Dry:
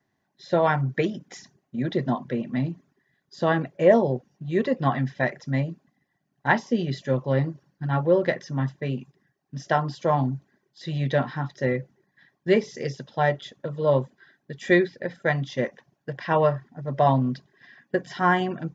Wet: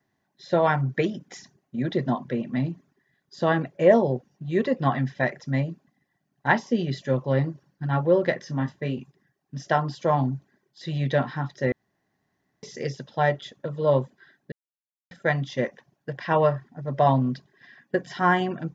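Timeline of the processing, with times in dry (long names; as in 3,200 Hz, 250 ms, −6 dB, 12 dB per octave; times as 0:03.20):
0:08.38–0:08.99: double-tracking delay 26 ms −9 dB
0:11.72–0:12.63: fill with room tone
0:14.52–0:15.11: silence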